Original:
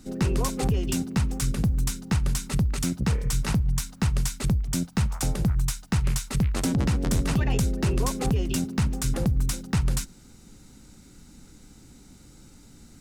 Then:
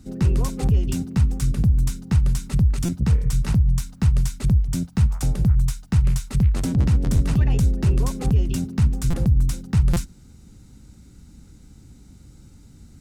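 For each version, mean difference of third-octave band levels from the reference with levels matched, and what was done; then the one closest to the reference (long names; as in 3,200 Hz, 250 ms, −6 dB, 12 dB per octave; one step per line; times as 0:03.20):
6.0 dB: parametric band 75 Hz +12.5 dB 2.7 octaves
buffer that repeats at 0:02.85/0:09.10/0:09.93, samples 256, times 5
level −4 dB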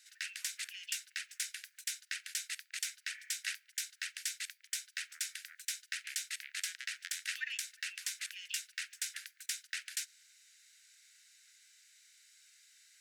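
20.0 dB: Butterworth high-pass 1,600 Hz 72 dB per octave
spectral tilt −2.5 dB per octave
level +1.5 dB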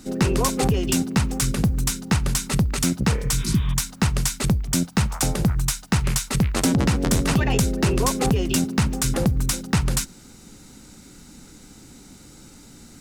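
2.5 dB: healed spectral selection 0:03.41–0:03.71, 390–3,900 Hz
low-shelf EQ 140 Hz −8 dB
level +7.5 dB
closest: third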